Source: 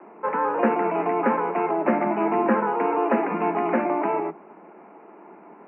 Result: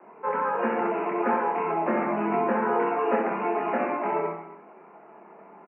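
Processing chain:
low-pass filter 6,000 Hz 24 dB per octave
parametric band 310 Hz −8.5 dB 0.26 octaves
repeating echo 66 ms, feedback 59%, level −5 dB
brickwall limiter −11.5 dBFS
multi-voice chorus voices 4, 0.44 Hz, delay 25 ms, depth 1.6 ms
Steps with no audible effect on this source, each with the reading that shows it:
low-pass filter 6,000 Hz: nothing at its input above 2,600 Hz

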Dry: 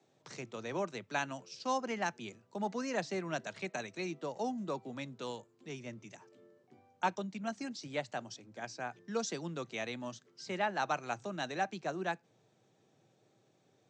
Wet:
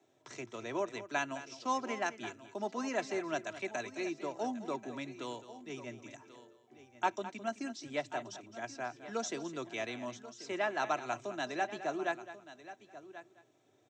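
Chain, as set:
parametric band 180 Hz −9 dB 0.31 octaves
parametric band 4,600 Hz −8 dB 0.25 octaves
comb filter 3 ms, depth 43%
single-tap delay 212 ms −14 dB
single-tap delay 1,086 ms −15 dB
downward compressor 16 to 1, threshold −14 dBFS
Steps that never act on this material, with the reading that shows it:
downward compressor, threshold −14 dBFS: peak of its input −17.5 dBFS

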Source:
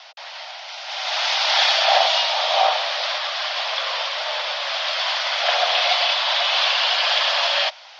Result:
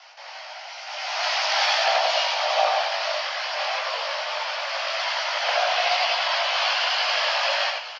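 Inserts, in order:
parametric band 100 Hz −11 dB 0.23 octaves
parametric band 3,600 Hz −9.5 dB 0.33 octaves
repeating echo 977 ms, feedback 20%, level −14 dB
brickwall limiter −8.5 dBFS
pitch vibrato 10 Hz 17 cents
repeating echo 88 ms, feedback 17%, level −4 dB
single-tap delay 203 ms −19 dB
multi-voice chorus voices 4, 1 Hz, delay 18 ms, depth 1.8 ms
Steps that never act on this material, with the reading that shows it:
parametric band 100 Hz: nothing at its input below 450 Hz

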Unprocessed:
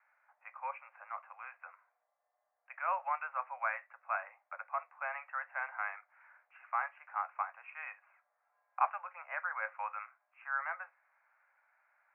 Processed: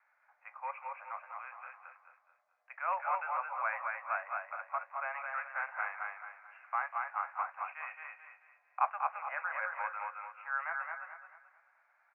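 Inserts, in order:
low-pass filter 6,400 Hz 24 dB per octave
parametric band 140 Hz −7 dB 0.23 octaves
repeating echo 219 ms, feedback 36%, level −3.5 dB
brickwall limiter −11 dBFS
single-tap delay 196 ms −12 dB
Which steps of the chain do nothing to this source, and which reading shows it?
low-pass filter 6,400 Hz: nothing at its input above 2,700 Hz
parametric band 140 Hz: nothing at its input below 480 Hz
brickwall limiter −11 dBFS: peak of its input −16.5 dBFS

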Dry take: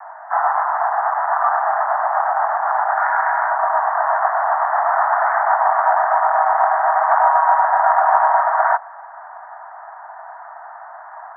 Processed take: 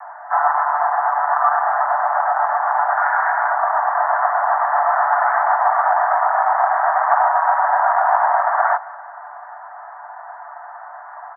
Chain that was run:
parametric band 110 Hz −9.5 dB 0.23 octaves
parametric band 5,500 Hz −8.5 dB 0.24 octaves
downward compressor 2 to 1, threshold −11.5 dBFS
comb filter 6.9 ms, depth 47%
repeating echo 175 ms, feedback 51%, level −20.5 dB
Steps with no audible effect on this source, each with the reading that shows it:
parametric band 110 Hz: nothing at its input below 570 Hz
parametric band 5,500 Hz: nothing at its input above 2,000 Hz

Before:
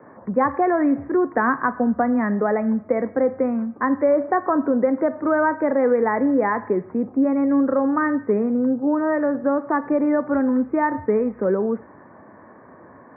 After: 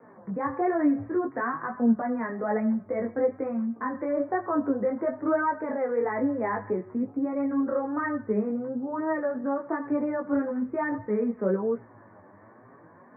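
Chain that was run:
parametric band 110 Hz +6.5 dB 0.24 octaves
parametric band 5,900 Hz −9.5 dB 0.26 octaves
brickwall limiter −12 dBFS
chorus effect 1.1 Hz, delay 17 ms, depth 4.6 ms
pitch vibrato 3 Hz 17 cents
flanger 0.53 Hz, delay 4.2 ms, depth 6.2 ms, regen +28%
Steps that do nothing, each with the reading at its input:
parametric band 5,900 Hz: nothing at its input above 1,900 Hz

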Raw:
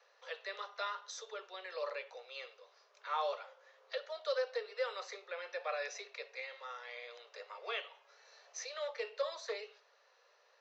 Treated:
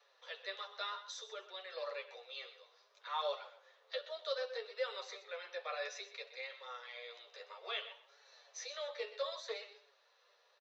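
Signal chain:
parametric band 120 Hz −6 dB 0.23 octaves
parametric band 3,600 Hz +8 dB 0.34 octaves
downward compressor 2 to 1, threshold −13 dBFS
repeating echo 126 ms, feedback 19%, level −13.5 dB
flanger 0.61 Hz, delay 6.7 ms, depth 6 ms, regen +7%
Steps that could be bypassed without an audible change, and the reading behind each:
parametric band 120 Hz: nothing at its input below 380 Hz
downward compressor, threshold −13 dBFS: peak of its input −23.0 dBFS

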